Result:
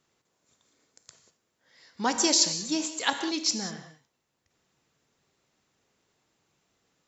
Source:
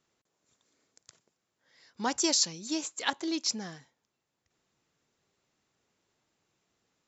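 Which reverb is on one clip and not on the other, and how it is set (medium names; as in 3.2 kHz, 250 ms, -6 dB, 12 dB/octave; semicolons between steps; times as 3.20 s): gated-style reverb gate 220 ms flat, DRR 7 dB; trim +3.5 dB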